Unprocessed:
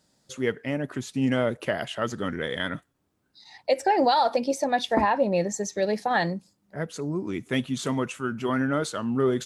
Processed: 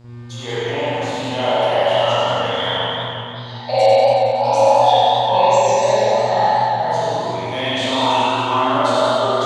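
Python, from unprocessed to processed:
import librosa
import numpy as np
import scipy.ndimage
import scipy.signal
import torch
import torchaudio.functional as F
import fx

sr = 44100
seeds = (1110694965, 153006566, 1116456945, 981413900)

y = fx.spec_trails(x, sr, decay_s=0.99)
y = fx.curve_eq(y, sr, hz=(240.0, 360.0, 550.0, 860.0, 1500.0, 3700.0, 6600.0, 11000.0), db=(0, -11, -4, 12, -9, 7, 1, -5))
y = fx.over_compress(y, sr, threshold_db=-20.0, ratio=-0.5)
y = fx.low_shelf_res(y, sr, hz=320.0, db=-10.5, q=1.5)
y = fx.dmg_buzz(y, sr, base_hz=120.0, harmonics=32, level_db=-39.0, tilt_db=-8, odd_only=False)
y = y + 10.0 ** (-3.0 / 20.0) * np.pad(y, (int(95 * sr / 1000.0), 0))[:len(y)]
y = fx.rev_spring(y, sr, rt60_s=1.6, pass_ms=(42,), chirp_ms=35, drr_db=-9.5)
y = fx.echo_warbled(y, sr, ms=184, feedback_pct=56, rate_hz=2.8, cents=107, wet_db=-6.0)
y = y * 10.0 ** (-7.5 / 20.0)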